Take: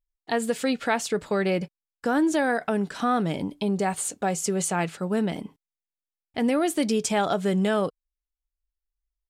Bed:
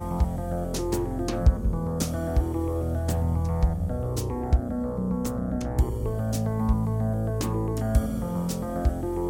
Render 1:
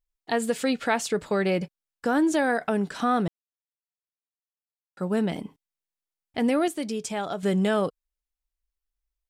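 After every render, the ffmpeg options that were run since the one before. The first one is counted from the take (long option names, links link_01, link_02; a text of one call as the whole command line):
ffmpeg -i in.wav -filter_complex "[0:a]asplit=5[link_01][link_02][link_03][link_04][link_05];[link_01]atrim=end=3.28,asetpts=PTS-STARTPTS,afade=type=out:start_time=3.276:duration=0.004:curve=hsin[link_06];[link_02]atrim=start=3.28:end=4.97,asetpts=PTS-STARTPTS,volume=0[link_07];[link_03]atrim=start=4.97:end=6.682,asetpts=PTS-STARTPTS,afade=type=in:duration=0.004:curve=hsin[link_08];[link_04]atrim=start=6.678:end=7.432,asetpts=PTS-STARTPTS,volume=-6.5dB[link_09];[link_05]atrim=start=7.428[link_10];[link_06][link_07][link_08]concat=n=3:v=0:a=1[link_11];[link_11][link_09]acrossfade=duration=0.004:curve1=hsin:curve2=hsin[link_12];[link_12][link_10]acrossfade=duration=0.004:curve1=hsin:curve2=hsin" out.wav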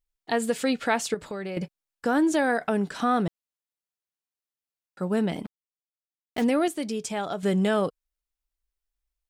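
ffmpeg -i in.wav -filter_complex "[0:a]asettb=1/sr,asplit=3[link_01][link_02][link_03];[link_01]atrim=end=1.144[link_04];[link_02]atrim=start=1.14:end=1.57,asetpts=PTS-STARTPTS,afade=type=in:duration=0.004:curve=qsin,afade=type=out:start_time=0.426:duration=0.004:curve=qsin,acompressor=threshold=-33dB:ratio=3:attack=3.2:release=140:knee=1:detection=peak[link_05];[link_03]atrim=start=1.566[link_06];[link_04][link_05]acrossfade=duration=0.004:curve1=hsin:curve2=qsin[link_07];[link_07][link_06]acrossfade=duration=0.004:curve1=qsin:curve2=hsin,asplit=3[link_08][link_09][link_10];[link_08]afade=type=out:start_time=5.44:duration=0.02[link_11];[link_09]acrusher=bits=5:mix=0:aa=0.5,afade=type=in:start_time=5.44:duration=0.02,afade=type=out:start_time=6.43:duration=0.02[link_12];[link_10]afade=type=in:start_time=6.43:duration=0.02[link_13];[link_11][link_12][link_13]amix=inputs=3:normalize=0" out.wav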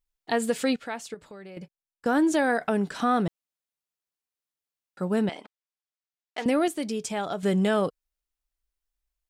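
ffmpeg -i in.wav -filter_complex "[0:a]asettb=1/sr,asplit=3[link_01][link_02][link_03];[link_01]atrim=end=5.294[link_04];[link_02]atrim=start=5.29:end=6.46,asetpts=PTS-STARTPTS,afade=type=in:duration=0.004:curve=qsin,afade=type=out:start_time=1.166:duration=0.004:curve=qsin,highpass=620,lowpass=6500[link_05];[link_03]atrim=start=6.456[link_06];[link_04][link_05]acrossfade=duration=0.004:curve1=hsin:curve2=qsin[link_07];[link_07][link_06]acrossfade=duration=0.004:curve1=qsin:curve2=hsin,asplit=3[link_08][link_09][link_10];[link_08]atrim=end=0.762[link_11];[link_09]atrim=start=0.758:end=2.062,asetpts=PTS-STARTPTS,volume=-10dB[link_12];[link_10]atrim=start=2.058[link_13];[link_11][link_12]acrossfade=duration=0.004:curve1=hsin:curve2=hsin[link_14];[link_14][link_13]acrossfade=duration=0.004:curve1=hsin:curve2=hsin" out.wav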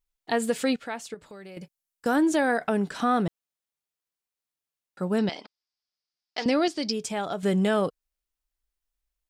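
ffmpeg -i in.wav -filter_complex "[0:a]asettb=1/sr,asplit=3[link_01][link_02][link_03];[link_01]atrim=end=1.294[link_04];[link_02]atrim=start=1.29:end=2.16,asetpts=PTS-STARTPTS,afade=type=in:duration=0.004:curve=qsin,afade=type=out:start_time=0.866:duration=0.004:curve=qsin,aemphasis=mode=production:type=cd[link_05];[link_03]atrim=start=2.156[link_06];[link_04][link_05]acrossfade=duration=0.004:curve1=hsin:curve2=qsin[link_07];[link_07][link_06]acrossfade=duration=0.004:curve1=qsin:curve2=hsin,asettb=1/sr,asplit=3[link_08][link_09][link_10];[link_08]atrim=end=5.184[link_11];[link_09]atrim=start=5.18:end=6.93,asetpts=PTS-STARTPTS,afade=type=in:duration=0.004:curve=qsin,afade=type=out:start_time=1.746:duration=0.004:curve=qsin,lowpass=frequency=5000:width_type=q:width=6[link_12];[link_10]atrim=start=6.926[link_13];[link_11][link_12]acrossfade=duration=0.004:curve1=hsin:curve2=qsin[link_14];[link_14][link_13]acrossfade=duration=0.004:curve1=qsin:curve2=hsin" out.wav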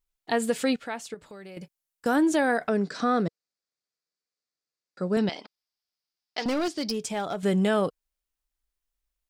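ffmpeg -i in.wav -filter_complex "[0:a]asettb=1/sr,asplit=3[link_01][link_02][link_03];[link_01]atrim=end=2.684[link_04];[link_02]atrim=start=2.68:end=5.17,asetpts=PTS-STARTPTS,afade=type=in:duration=0.004:curve=qsin,afade=type=out:start_time=2.486:duration=0.004:curve=qsin,highpass=130,equalizer=frequency=480:width_type=q:width=4:gain=4,equalizer=frequency=880:width_type=q:width=4:gain=-9,equalizer=frequency=3000:width_type=q:width=4:gain=-9,equalizer=frequency=4700:width_type=q:width=4:gain=8,lowpass=frequency=7600:width=0.5412,lowpass=frequency=7600:width=1.3066[link_05];[link_03]atrim=start=5.166[link_06];[link_04][link_05]acrossfade=duration=0.004:curve1=hsin:curve2=qsin[link_07];[link_07][link_06]acrossfade=duration=0.004:curve1=qsin:curve2=hsin,asettb=1/sr,asplit=3[link_08][link_09][link_10];[link_08]atrim=end=6.404[link_11];[link_09]atrim=start=6.4:end=7.37,asetpts=PTS-STARTPTS,afade=type=in:duration=0.004:curve=qsin,afade=type=out:start_time=0.966:duration=0.004:curve=qsin,asoftclip=type=hard:threshold=-23.5dB[link_12];[link_10]atrim=start=7.366[link_13];[link_11][link_12]acrossfade=duration=0.004:curve1=hsin:curve2=qsin[link_14];[link_14][link_13]acrossfade=duration=0.004:curve1=qsin:curve2=hsin" out.wav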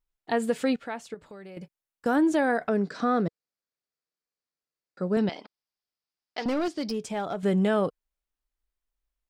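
ffmpeg -i in.wav -af "highshelf=frequency=3000:gain=-8.5" out.wav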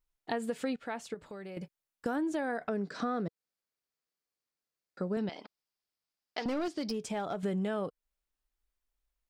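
ffmpeg -i in.wav -af "acompressor=threshold=-33dB:ratio=3" out.wav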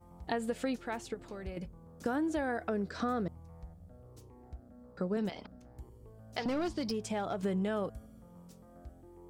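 ffmpeg -i in.wav -i bed.wav -filter_complex "[1:a]volume=-26dB[link_01];[0:a][link_01]amix=inputs=2:normalize=0" out.wav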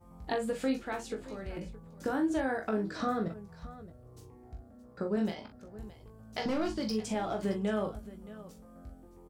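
ffmpeg -i in.wav -filter_complex "[0:a]asplit=2[link_01][link_02];[link_02]adelay=19,volume=-5.5dB[link_03];[link_01][link_03]amix=inputs=2:normalize=0,aecho=1:1:41|621:0.422|0.15" out.wav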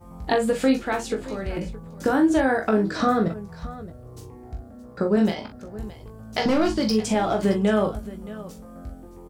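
ffmpeg -i in.wav -af "volume=11dB" out.wav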